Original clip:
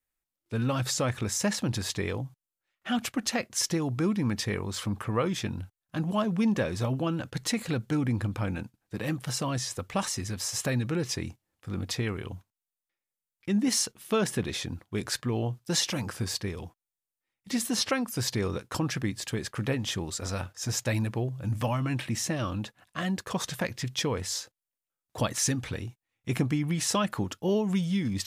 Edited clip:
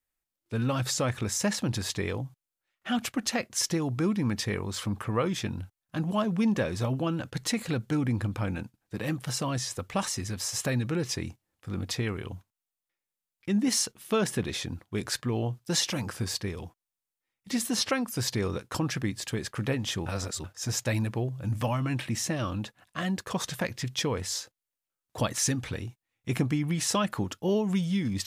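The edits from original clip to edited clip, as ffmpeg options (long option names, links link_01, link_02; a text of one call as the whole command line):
ffmpeg -i in.wav -filter_complex "[0:a]asplit=3[link_01][link_02][link_03];[link_01]atrim=end=20.062[link_04];[link_02]atrim=start=20.058:end=20.442,asetpts=PTS-STARTPTS,areverse[link_05];[link_03]atrim=start=20.438[link_06];[link_04][link_05]acrossfade=duration=0.004:curve1=hsin:curve2=hsin[link_07];[link_07][link_06]acrossfade=duration=0.004:curve1=hsin:curve2=hsin" out.wav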